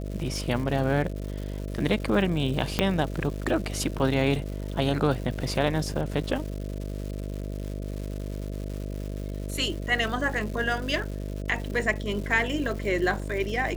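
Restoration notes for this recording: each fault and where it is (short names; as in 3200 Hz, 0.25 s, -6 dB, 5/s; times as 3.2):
buzz 50 Hz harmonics 13 -33 dBFS
crackle 310/s -35 dBFS
2.79 pop -8 dBFS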